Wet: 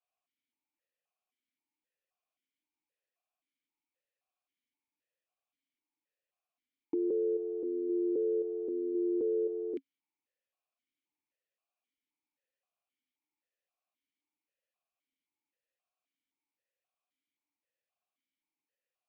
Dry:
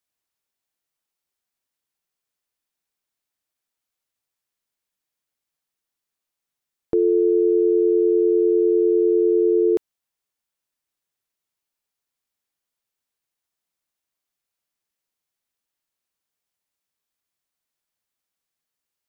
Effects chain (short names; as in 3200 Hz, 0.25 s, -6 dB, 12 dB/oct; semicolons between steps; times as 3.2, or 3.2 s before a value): limiter -20 dBFS, peak gain reduction 8.5 dB; vowel sequencer 3.8 Hz; gain +7 dB